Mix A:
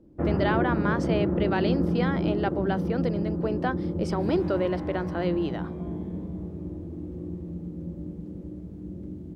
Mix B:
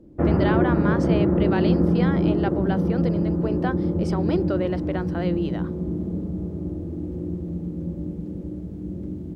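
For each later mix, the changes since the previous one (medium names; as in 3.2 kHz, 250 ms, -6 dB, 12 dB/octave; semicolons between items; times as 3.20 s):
first sound +6.0 dB; second sound -12.0 dB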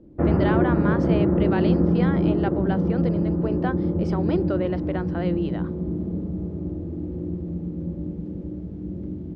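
master: add distance through air 130 m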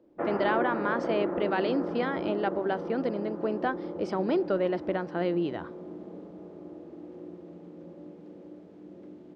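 first sound: add high-pass 590 Hz 12 dB/octave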